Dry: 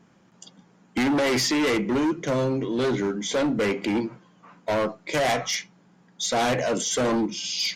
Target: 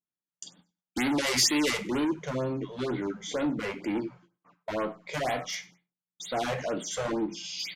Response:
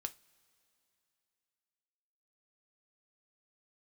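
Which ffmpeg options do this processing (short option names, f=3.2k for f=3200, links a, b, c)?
-filter_complex "[0:a]asetnsamples=n=441:p=0,asendcmd='2.04 equalizer g -3.5',equalizer=f=8.9k:t=o:w=2.7:g=10,agate=range=-39dB:threshold=-48dB:ratio=16:detection=peak,aecho=1:1:97|194:0.0794|0.0222[a];[1:a]atrim=start_sample=2205,afade=t=out:st=0.17:d=0.01,atrim=end_sample=7938[b];[a][b]afir=irnorm=-1:irlink=0,afftfilt=real='re*(1-between(b*sr/1024,260*pow(6700/260,0.5+0.5*sin(2*PI*2.1*pts/sr))/1.41,260*pow(6700/260,0.5+0.5*sin(2*PI*2.1*pts/sr))*1.41))':imag='im*(1-between(b*sr/1024,260*pow(6700/260,0.5+0.5*sin(2*PI*2.1*pts/sr))/1.41,260*pow(6700/260,0.5+0.5*sin(2*PI*2.1*pts/sr))*1.41))':win_size=1024:overlap=0.75,volume=-3.5dB"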